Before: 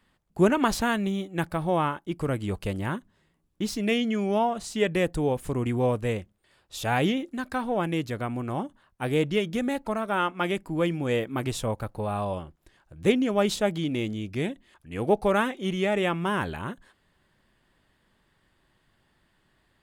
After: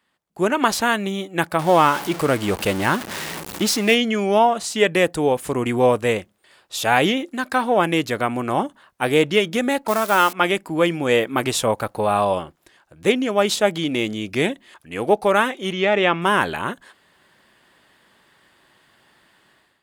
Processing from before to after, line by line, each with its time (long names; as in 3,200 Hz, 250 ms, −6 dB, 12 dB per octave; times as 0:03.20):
0:01.59–0:03.95: converter with a step at zero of −34 dBFS
0:09.88–0:10.33: spike at every zero crossing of −29 dBFS
0:15.72–0:16.22: low-pass filter 5,400 Hz 24 dB per octave
whole clip: automatic gain control gain up to 13.5 dB; high-pass filter 450 Hz 6 dB per octave